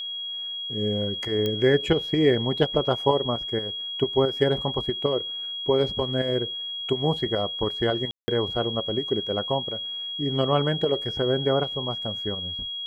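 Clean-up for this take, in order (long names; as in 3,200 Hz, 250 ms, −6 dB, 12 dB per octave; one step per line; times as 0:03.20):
click removal
notch filter 3,300 Hz, Q 30
ambience match 0:08.11–0:08.28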